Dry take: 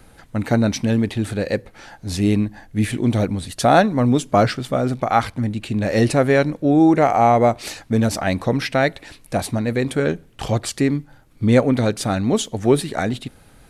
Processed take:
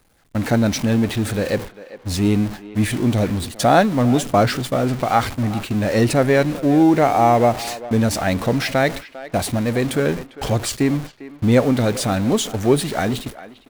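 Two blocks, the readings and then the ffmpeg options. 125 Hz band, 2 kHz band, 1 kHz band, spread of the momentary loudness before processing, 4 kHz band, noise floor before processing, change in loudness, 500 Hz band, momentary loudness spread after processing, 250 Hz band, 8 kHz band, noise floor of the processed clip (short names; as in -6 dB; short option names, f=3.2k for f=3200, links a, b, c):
+0.5 dB, +0.5 dB, 0.0 dB, 10 LU, +2.5 dB, -49 dBFS, +0.5 dB, 0.0 dB, 10 LU, +0.5 dB, +3.0 dB, -47 dBFS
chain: -filter_complex "[0:a]aeval=exprs='val(0)+0.5*0.0596*sgn(val(0))':c=same,agate=range=-29dB:threshold=-25dB:ratio=16:detection=peak,asplit=2[a][b];[b]adelay=400,highpass=300,lowpass=3.4k,asoftclip=type=hard:threshold=-9.5dB,volume=-15dB[c];[a][c]amix=inputs=2:normalize=0,volume=-1dB"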